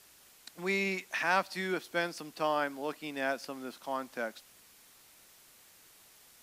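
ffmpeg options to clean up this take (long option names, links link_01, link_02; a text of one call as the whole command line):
ffmpeg -i in.wav -af "afftdn=noise_reduction=20:noise_floor=-60" out.wav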